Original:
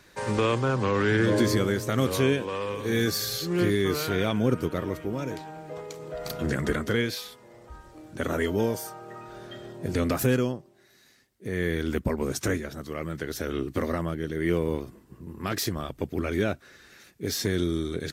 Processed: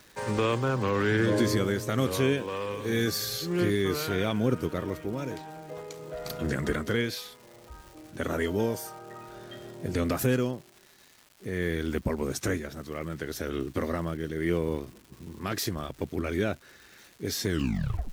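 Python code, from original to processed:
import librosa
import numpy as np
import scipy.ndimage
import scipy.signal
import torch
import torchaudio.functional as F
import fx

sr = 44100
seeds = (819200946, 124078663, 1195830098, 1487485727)

y = fx.tape_stop_end(x, sr, length_s=0.64)
y = fx.dmg_crackle(y, sr, seeds[0], per_s=430.0, level_db=-41.0)
y = F.gain(torch.from_numpy(y), -2.0).numpy()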